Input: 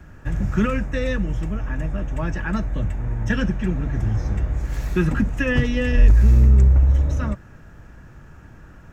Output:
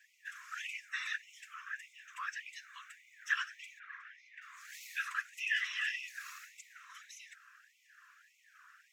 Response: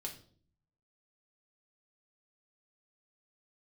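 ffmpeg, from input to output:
-filter_complex "[0:a]asettb=1/sr,asplit=3[a][b][c];[a]atrim=end=3.794[d];[b]atrim=start=3.79:end=4.42,asetpts=PTS-STARTPTS,afade=t=in:d=0.004:c=qsin,afade=t=out:st=0.626:d=0.004:c=qsin,asuperpass=centerf=1300:order=4:qfactor=0.65[e];[c]atrim=start=4.416[f];[d][e]acrossfade=d=0.004:c1=hsin:c2=qsin[g];[g][f]acrossfade=d=0.004:c1=qsin:c2=hsin,afftfilt=real='hypot(re,im)*cos(2*PI*random(0))':imag='hypot(re,im)*sin(2*PI*random(1))':win_size=512:overlap=0.75,afftfilt=real='re*gte(b*sr/1024,980*pow(2000/980,0.5+0.5*sin(2*PI*1.7*pts/sr)))':imag='im*gte(b*sr/1024,980*pow(2000/980,0.5+0.5*sin(2*PI*1.7*pts/sr)))':win_size=1024:overlap=0.75,volume=1dB"

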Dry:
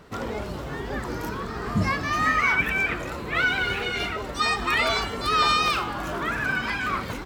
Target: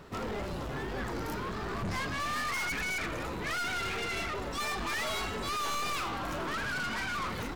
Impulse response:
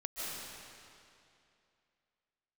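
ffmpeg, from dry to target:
-af "aeval=exprs='(tanh(39.8*val(0)+0.3)-tanh(0.3))/39.8':c=same,asetrate=42336,aresample=44100"

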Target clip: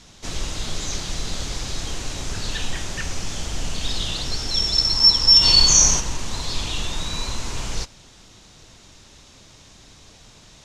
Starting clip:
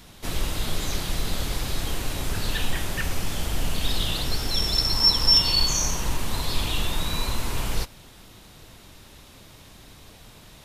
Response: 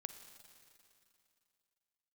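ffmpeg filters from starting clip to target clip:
-filter_complex "[0:a]asplit=3[a][b][c];[a]afade=t=out:st=5.41:d=0.02[d];[b]acontrast=53,afade=t=in:st=5.41:d=0.02,afade=t=out:st=5.99:d=0.02[e];[c]afade=t=in:st=5.99:d=0.02[f];[d][e][f]amix=inputs=3:normalize=0,lowpass=f=6.5k:t=q:w=2.6,volume=-1.5dB"

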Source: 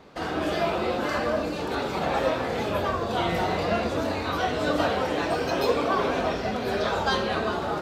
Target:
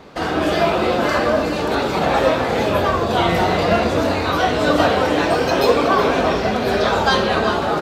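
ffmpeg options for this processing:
-af "aecho=1:1:369:0.251,volume=8.5dB"

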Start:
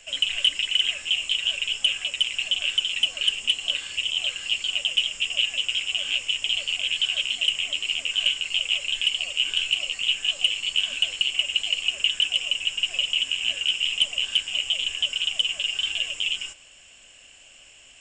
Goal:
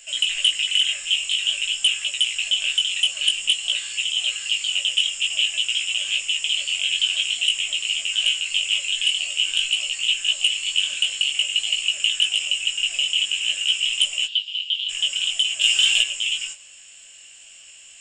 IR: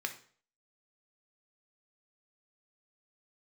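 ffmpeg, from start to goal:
-filter_complex "[0:a]asplit=3[a][b][c];[a]afade=t=out:st=14.25:d=0.02[d];[b]asuperpass=centerf=3600:order=4:qfactor=2.5,afade=t=in:st=14.25:d=0.02,afade=t=out:st=14.88:d=0.02[e];[c]afade=t=in:st=14.88:d=0.02[f];[d][e][f]amix=inputs=3:normalize=0,asettb=1/sr,asplit=3[g][h][i];[g]atrim=end=15.614[j];[h]atrim=start=15.61:end=16.02,asetpts=PTS-STARTPTS,afade=t=in:d=0.004:c=qsin,afade=t=out:st=0.406:d=0.004:c=qsin,acontrast=84[k];[i]atrim=start=16.016[l];[j][k]acrossfade=d=0.004:c1=hsin:c2=qsin[m];[m][l]acrossfade=d=0.004:c1=qsin:c2=hsin,crystalizer=i=6:c=0,asplit=2[n][o];[1:a]atrim=start_sample=2205,asetrate=33957,aresample=44100[p];[o][p]afir=irnorm=-1:irlink=0,volume=-10.5dB[q];[n][q]amix=inputs=2:normalize=0,flanger=delay=17:depth=4.4:speed=0.5,volume=-6dB"

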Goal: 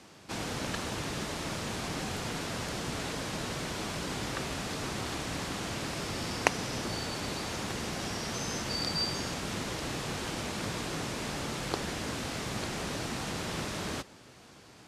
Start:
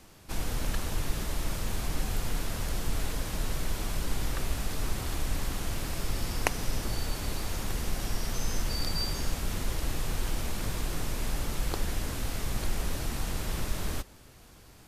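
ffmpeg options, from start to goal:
-af "highpass=140,lowpass=7.2k,volume=3dB"

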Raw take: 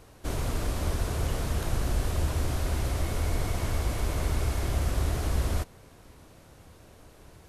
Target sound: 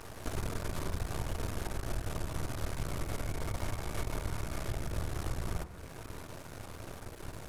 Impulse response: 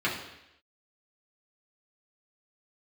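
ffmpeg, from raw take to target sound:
-filter_complex "[0:a]acompressor=threshold=-41dB:ratio=5,aeval=exprs='max(val(0),0)':c=same,asplit=2[a][b];[1:a]atrim=start_sample=2205,asetrate=23373,aresample=44100[c];[b][c]afir=irnorm=-1:irlink=0,volume=-21.5dB[d];[a][d]amix=inputs=2:normalize=0,volume=10dB"

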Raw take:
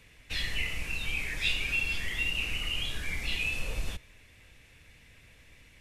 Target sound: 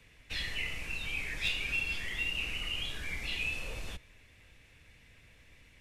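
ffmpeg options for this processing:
-filter_complex "[0:a]highshelf=f=7.2k:g=-4.5,acrossover=split=240|1400|6700[a][b][c][d];[a]alimiter=level_in=9dB:limit=-24dB:level=0:latency=1,volume=-9dB[e];[c]aeval=exprs='clip(val(0),-1,0.0562)':c=same[f];[e][b][f][d]amix=inputs=4:normalize=0,volume=-2.5dB"

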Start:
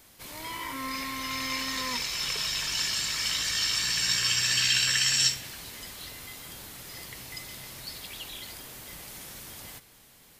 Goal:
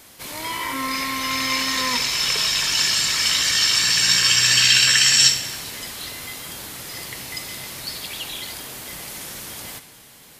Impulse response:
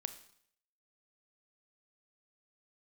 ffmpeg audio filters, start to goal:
-filter_complex "[0:a]asplit=2[a][b];[b]highpass=f=130:p=1[c];[1:a]atrim=start_sample=2205,asetrate=26019,aresample=44100[d];[c][d]afir=irnorm=-1:irlink=0,volume=5dB[e];[a][e]amix=inputs=2:normalize=0"

